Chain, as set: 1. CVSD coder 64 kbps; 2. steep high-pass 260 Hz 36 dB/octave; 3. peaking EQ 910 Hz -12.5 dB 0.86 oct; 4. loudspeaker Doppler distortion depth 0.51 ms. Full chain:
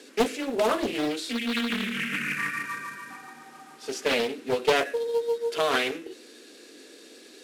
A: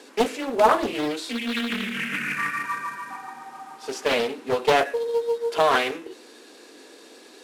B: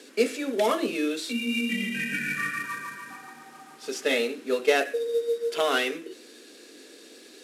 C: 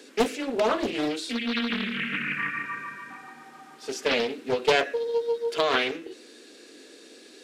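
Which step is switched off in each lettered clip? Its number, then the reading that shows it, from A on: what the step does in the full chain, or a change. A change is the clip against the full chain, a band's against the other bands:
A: 3, 1 kHz band +6.0 dB; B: 4, 125 Hz band -2.5 dB; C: 1, 8 kHz band -3.0 dB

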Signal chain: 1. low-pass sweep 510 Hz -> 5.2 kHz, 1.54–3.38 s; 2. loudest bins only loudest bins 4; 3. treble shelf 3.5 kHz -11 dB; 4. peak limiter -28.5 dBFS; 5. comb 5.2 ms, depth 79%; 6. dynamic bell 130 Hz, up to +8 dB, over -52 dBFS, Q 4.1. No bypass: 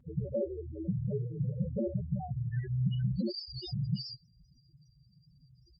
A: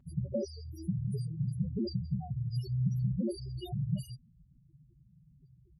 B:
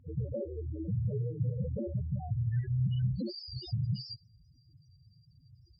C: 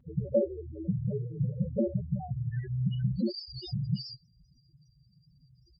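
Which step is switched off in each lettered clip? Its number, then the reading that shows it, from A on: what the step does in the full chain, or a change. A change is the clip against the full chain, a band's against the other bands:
1, 4 kHz band -5.5 dB; 5, crest factor change -2.5 dB; 4, crest factor change +4.0 dB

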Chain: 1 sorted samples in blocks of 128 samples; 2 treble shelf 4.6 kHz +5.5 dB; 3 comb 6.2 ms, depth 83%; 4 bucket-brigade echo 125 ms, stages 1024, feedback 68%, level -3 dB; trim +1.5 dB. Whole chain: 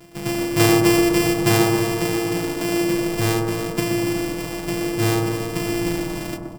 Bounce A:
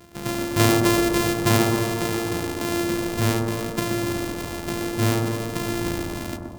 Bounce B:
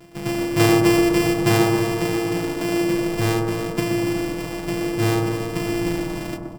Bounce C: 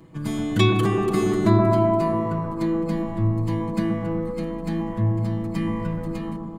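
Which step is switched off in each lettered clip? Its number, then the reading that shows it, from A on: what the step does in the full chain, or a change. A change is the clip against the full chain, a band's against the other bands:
3, 500 Hz band -1.5 dB; 2, 8 kHz band -4.0 dB; 1, crest factor change -2.0 dB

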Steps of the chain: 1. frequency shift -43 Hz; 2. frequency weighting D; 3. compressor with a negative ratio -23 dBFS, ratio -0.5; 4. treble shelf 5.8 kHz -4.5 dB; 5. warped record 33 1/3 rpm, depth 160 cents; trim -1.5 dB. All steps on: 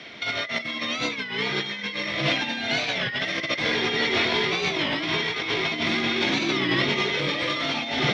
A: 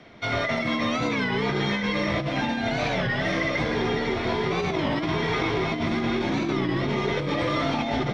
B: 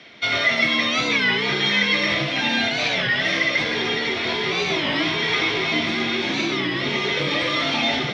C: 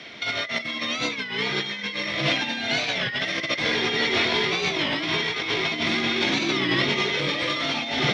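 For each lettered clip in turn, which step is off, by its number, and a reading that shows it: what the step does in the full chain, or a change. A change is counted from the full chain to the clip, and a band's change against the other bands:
2, 4 kHz band -10.5 dB; 3, 2 kHz band +1.5 dB; 4, 8 kHz band +2.0 dB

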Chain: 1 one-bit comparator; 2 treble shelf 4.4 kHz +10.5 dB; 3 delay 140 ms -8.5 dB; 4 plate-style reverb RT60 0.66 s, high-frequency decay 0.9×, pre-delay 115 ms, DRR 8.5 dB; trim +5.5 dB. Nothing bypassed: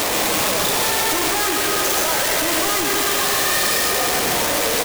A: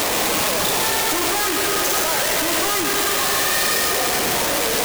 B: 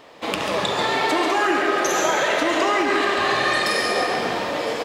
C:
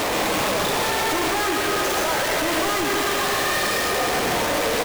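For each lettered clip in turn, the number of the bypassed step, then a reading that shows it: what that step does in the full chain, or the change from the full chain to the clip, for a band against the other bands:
3, echo-to-direct -5.0 dB to -8.5 dB; 1, distortion -2 dB; 2, 8 kHz band -7.5 dB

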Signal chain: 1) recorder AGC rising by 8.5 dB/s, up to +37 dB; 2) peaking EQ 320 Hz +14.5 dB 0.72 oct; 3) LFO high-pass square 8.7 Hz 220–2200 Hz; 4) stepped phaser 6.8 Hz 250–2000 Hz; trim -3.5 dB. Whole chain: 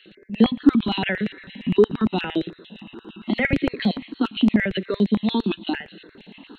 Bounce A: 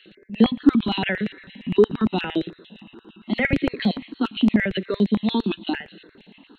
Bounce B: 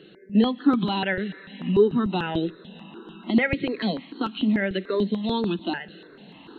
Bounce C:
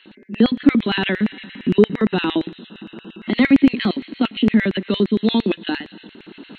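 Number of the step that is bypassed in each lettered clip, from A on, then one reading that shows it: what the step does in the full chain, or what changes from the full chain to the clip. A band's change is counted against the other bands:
1, momentary loudness spread change -7 LU; 3, momentary loudness spread change -3 LU; 4, 4 kHz band +1.5 dB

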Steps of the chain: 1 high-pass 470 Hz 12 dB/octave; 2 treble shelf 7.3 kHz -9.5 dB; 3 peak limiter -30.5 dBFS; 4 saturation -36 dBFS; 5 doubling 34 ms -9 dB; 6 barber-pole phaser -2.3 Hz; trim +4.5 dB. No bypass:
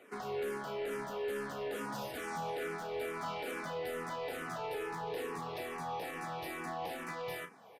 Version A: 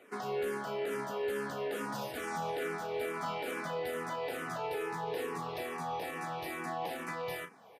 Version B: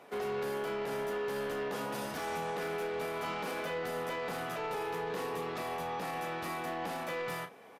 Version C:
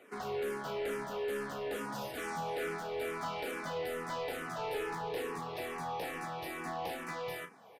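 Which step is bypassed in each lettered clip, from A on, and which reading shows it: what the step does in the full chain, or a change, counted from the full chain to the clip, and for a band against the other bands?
4, distortion -15 dB; 6, crest factor change -3.5 dB; 3, mean gain reduction 2.0 dB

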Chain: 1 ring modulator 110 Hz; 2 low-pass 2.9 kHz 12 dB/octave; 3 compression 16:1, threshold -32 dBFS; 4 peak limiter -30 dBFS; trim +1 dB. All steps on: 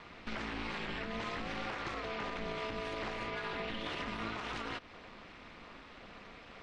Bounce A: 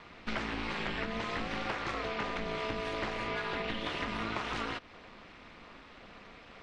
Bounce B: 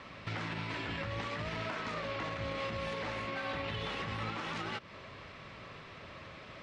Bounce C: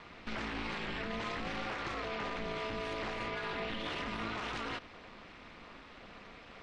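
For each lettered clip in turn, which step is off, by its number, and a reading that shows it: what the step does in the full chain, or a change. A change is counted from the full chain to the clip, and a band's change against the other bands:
4, mean gain reduction 2.5 dB; 1, momentary loudness spread change -1 LU; 3, mean gain reduction 6.0 dB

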